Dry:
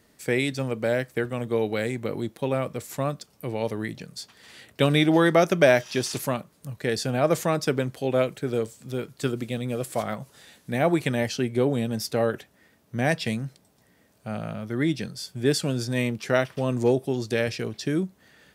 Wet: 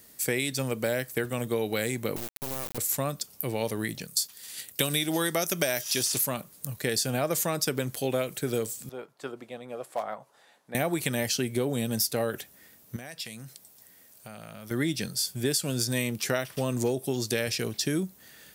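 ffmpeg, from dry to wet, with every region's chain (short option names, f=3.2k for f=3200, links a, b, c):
-filter_complex "[0:a]asettb=1/sr,asplit=3[a][b][c];[a]atrim=end=2.164[d];[b]atrim=start=2.16:end=2.78,asetpts=PTS-STARTPTS,afade=t=in:d=0.004:c=qsin,afade=t=out:st=0.616:d=0.004:c=qsin,lowpass=f=2.2k:p=1,acompressor=threshold=-32dB:ratio=3:attack=3.2:release=140:knee=1:detection=peak,acrusher=bits=4:dc=4:mix=0:aa=0.000001[e];[c]atrim=start=2.776[f];[d][e]acrossfade=d=0.004:c1=hsin:c2=qsin[g];[g][f]acrossfade=d=0.004:c1=qsin:c2=hsin,asettb=1/sr,asplit=3[h][i][j];[h]atrim=end=4.074[k];[i]atrim=start=4.07:end=6.03,asetpts=PTS-STARTPTS,afade=t=in:d=0.004:c=qsin,afade=t=out:st=1.956:d=0.004:c=qsin,highshelf=f=4.2k:g=11.5,agate=range=-7dB:threshold=-43dB:ratio=16:release=100:detection=peak[l];[j]atrim=start=6.026[m];[k][l]acrossfade=d=0.004:c1=hsin:c2=qsin[n];[n][m]acrossfade=d=0.004:c1=qsin:c2=hsin,asettb=1/sr,asplit=3[o][p][q];[o]atrim=end=8.894[r];[p]atrim=start=8.89:end=10.75,asetpts=PTS-STARTPTS,afade=t=in:d=0.004:c=qsin,afade=t=out:st=1.856:d=0.004:c=qsin,bandpass=f=830:t=q:w=1.6,asoftclip=type=hard:threshold=-21dB[s];[q]atrim=start=10.746[t];[r][s]acrossfade=d=0.004:c1=hsin:c2=qsin[u];[u][t]acrossfade=d=0.004:c1=qsin:c2=hsin,asettb=1/sr,asplit=3[v][w][x];[v]atrim=end=12.964[y];[w]atrim=start=12.96:end=14.71,asetpts=PTS-STARTPTS,afade=t=in:d=0.004:c=qsin,afade=t=out:st=1.746:d=0.004:c=qsin,lowshelf=f=440:g=-6.5,acompressor=threshold=-38dB:ratio=10:attack=3.2:release=140:knee=1:detection=peak[z];[x]atrim=start=14.706[aa];[y][z]acrossfade=d=0.004:c1=hsin:c2=qsin[ab];[ab][aa]acrossfade=d=0.004:c1=qsin:c2=hsin,aemphasis=mode=production:type=75fm,acompressor=threshold=-23dB:ratio=10"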